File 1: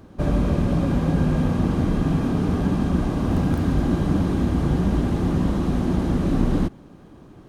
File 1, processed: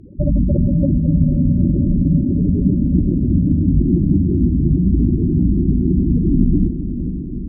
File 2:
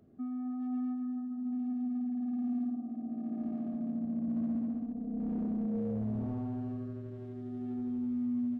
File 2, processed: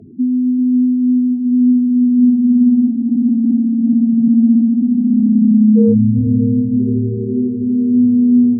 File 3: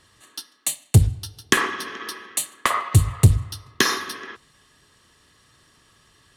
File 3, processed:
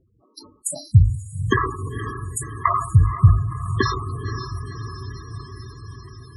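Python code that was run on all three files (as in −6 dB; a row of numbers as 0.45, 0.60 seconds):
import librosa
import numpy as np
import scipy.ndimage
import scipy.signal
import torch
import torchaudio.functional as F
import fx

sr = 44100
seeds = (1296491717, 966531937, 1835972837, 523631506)

y = fx.wiener(x, sr, points=25)
y = fx.spec_gate(y, sr, threshold_db=-10, keep='strong')
y = fx.curve_eq(y, sr, hz=(300.0, 690.0, 1700.0, 11000.0), db=(0, 5, -5, 9))
y = fx.echo_diffused(y, sr, ms=514, feedback_pct=70, wet_db=-10.5)
y = fx.dynamic_eq(y, sr, hz=1300.0, q=2.7, threshold_db=-47.0, ratio=4.0, max_db=5)
y = fx.spec_topn(y, sr, count=32)
y = fx.env_lowpass_down(y, sr, base_hz=2800.0, full_db=-15.5)
y = fx.sustainer(y, sr, db_per_s=110.0)
y = librosa.util.normalize(y) * 10.0 ** (-2 / 20.0)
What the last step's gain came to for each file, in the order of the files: +6.0, +23.0, +1.0 decibels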